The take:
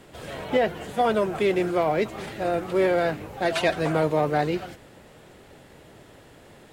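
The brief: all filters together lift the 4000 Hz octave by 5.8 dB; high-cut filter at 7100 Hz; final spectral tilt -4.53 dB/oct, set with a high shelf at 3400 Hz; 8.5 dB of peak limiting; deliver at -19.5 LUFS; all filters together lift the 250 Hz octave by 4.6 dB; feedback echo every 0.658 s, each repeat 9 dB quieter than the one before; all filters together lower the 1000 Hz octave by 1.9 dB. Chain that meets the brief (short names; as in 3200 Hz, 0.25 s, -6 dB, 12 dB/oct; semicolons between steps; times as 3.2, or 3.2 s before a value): LPF 7100 Hz; bell 250 Hz +7.5 dB; bell 1000 Hz -4.5 dB; high shelf 3400 Hz +4.5 dB; bell 4000 Hz +5 dB; limiter -16 dBFS; feedback echo 0.658 s, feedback 35%, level -9 dB; gain +7 dB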